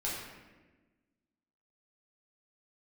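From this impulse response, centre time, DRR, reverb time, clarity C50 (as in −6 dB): 76 ms, −7.0 dB, 1.2 s, 0.5 dB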